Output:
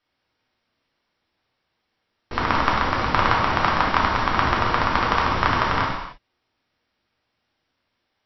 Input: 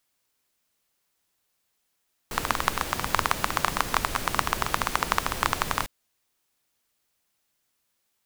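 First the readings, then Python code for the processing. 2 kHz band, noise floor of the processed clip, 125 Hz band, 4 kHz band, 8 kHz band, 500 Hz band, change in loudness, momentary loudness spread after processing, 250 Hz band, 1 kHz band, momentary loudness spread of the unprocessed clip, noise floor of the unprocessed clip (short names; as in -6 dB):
+6.5 dB, -76 dBFS, +9.5 dB, +3.5 dB, under -10 dB, +8.0 dB, +6.5 dB, 7 LU, +10.0 dB, +7.5 dB, 4 LU, -75 dBFS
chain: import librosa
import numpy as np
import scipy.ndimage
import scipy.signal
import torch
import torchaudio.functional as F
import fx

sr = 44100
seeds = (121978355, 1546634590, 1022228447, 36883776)

y = fx.brickwall_lowpass(x, sr, high_hz=5800.0)
y = fx.high_shelf(y, sr, hz=4000.0, db=-12.0)
y = fx.rev_gated(y, sr, seeds[0], gate_ms=330, shape='falling', drr_db=-4.0)
y = y * librosa.db_to_amplitude(3.0)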